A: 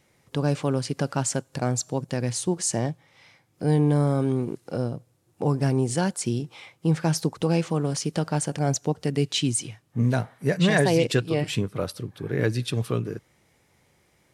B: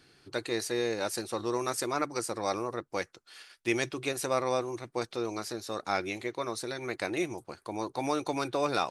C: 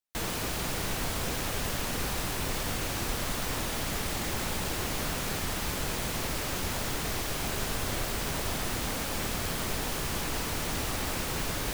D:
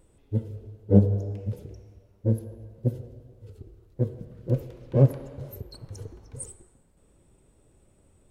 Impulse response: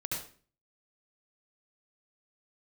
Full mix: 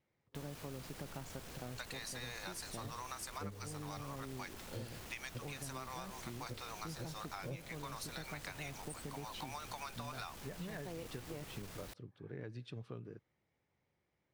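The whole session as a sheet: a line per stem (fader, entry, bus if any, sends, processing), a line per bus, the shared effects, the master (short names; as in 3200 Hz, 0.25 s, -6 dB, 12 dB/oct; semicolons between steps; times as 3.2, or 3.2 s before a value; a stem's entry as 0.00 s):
-18.0 dB, 0.00 s, bus A, no send, LPF 5500 Hz; high shelf 3600 Hz -7.5 dB
-3.0 dB, 1.45 s, bus A, no send, HPF 790 Hz 24 dB/oct
-15.0 dB, 0.20 s, no bus, no send, soft clip -31 dBFS, distortion -12 dB
-14.0 dB, 2.50 s, no bus, no send, tilt shelf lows -5.5 dB
bus A: 0.0 dB, vibrato 10 Hz 26 cents; compressor, threshold -38 dBFS, peak gain reduction 9.5 dB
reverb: off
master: compressor 6:1, threshold -41 dBFS, peak gain reduction 12.5 dB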